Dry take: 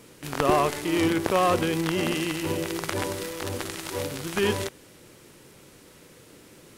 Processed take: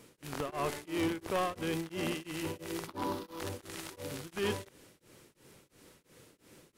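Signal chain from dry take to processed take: 2.87–3.40 s: graphic EQ 125/250/500/1000/2000/4000/8000 Hz -4/+10/-4/+11/-8/+4/-10 dB; saturation -18.5 dBFS, distortion -14 dB; tremolo of two beating tones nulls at 2.9 Hz; trim -6 dB

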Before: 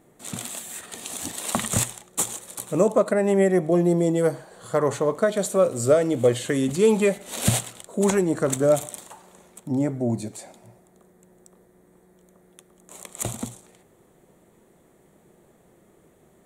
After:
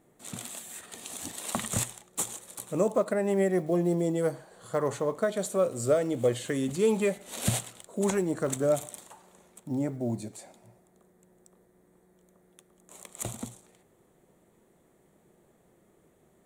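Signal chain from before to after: block-companded coder 7-bit; trim -6.5 dB

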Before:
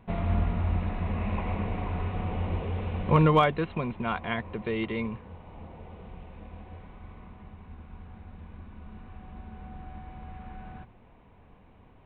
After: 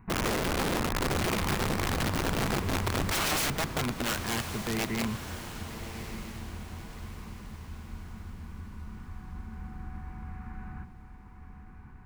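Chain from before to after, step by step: static phaser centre 1.4 kHz, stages 4; integer overflow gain 27 dB; echo that smears into a reverb 1141 ms, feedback 43%, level -10 dB; trim +3 dB

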